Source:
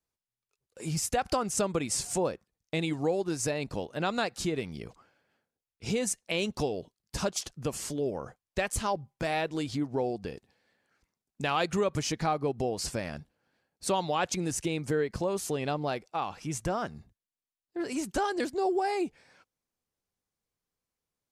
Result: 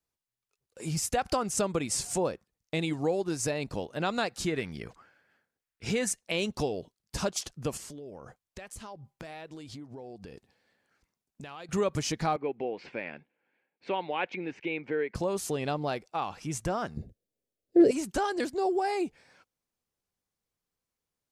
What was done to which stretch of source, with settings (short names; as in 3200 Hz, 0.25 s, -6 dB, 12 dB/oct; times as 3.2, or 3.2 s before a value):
4.47–6.11 bell 1700 Hz +8.5 dB 0.8 oct
7.77–11.69 compressor, threshold -41 dBFS
12.36–15.15 speaker cabinet 310–2800 Hz, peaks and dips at 660 Hz -6 dB, 1200 Hz -8 dB, 2300 Hz +8 dB
16.97–17.91 resonant low shelf 720 Hz +11.5 dB, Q 3